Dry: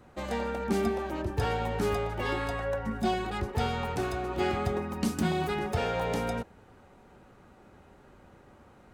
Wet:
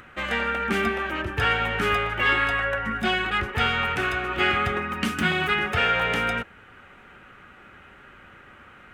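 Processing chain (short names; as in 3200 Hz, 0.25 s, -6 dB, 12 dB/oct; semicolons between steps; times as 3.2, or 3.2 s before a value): band shelf 2000 Hz +14.5 dB; upward compressor, threshold -46 dBFS; gain +1 dB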